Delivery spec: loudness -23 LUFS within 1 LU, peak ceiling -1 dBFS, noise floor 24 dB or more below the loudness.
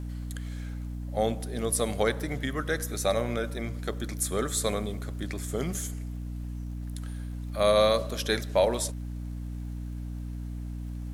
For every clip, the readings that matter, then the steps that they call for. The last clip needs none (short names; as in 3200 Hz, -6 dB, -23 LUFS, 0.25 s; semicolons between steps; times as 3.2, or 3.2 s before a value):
ticks 32/s; hum 60 Hz; harmonics up to 300 Hz; hum level -33 dBFS; loudness -30.5 LUFS; peak -10.5 dBFS; loudness target -23.0 LUFS
-> de-click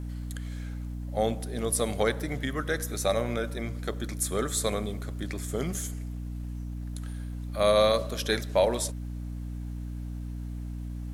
ticks 0.27/s; hum 60 Hz; harmonics up to 300 Hz; hum level -33 dBFS
-> de-hum 60 Hz, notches 5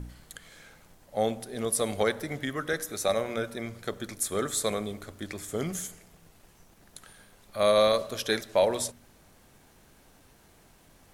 hum none; loudness -29.0 LUFS; peak -10.5 dBFS; loudness target -23.0 LUFS
-> gain +6 dB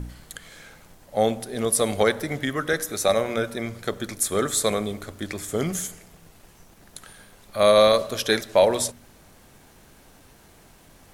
loudness -23.0 LUFS; peak -4.5 dBFS; noise floor -53 dBFS